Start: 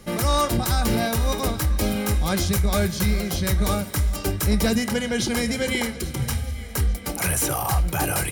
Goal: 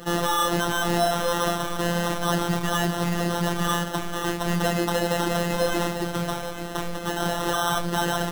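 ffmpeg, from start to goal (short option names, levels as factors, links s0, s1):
-filter_complex "[0:a]asplit=2[s0][s1];[s1]highpass=f=720:p=1,volume=14.1,asoftclip=type=tanh:threshold=0.251[s2];[s0][s2]amix=inputs=2:normalize=0,lowpass=f=3300:p=1,volume=0.501,acrusher=samples=19:mix=1:aa=0.000001,afftfilt=real='hypot(re,im)*cos(PI*b)':imag='0':win_size=1024:overlap=0.75"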